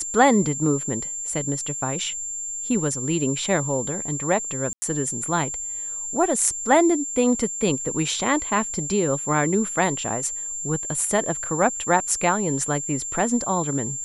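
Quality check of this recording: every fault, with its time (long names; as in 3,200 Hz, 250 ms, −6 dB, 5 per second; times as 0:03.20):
whistle 7,300 Hz −28 dBFS
0:04.73–0:04.82: drop-out 90 ms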